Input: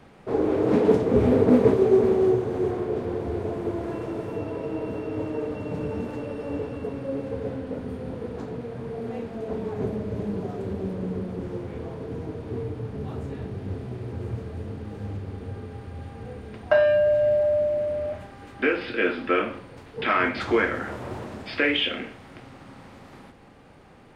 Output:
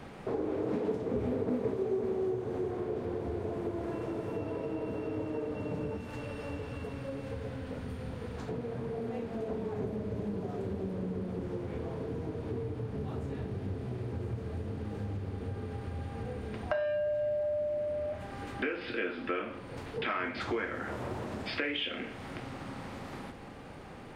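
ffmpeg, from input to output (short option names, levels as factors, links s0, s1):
-filter_complex "[0:a]asettb=1/sr,asplit=3[s0][s1][s2];[s0]atrim=end=5.974[s3];[s1]atrim=start=5.97:end=8.49,asetpts=PTS-STARTPTS,afade=t=in:d=0.004:c=qsin,afade=t=out:st=2.516:d=0.004:c=qsin,equalizer=f=370:w=0.46:g=-11.5[s4];[s2]atrim=start=8.486[s5];[s3][s4]acrossfade=d=0.004:c1=hsin:c2=qsin[s6];[s6][s5]acrossfade=d=0.004:c1=qsin:c2=hsin,acompressor=threshold=0.01:ratio=3,volume=1.58"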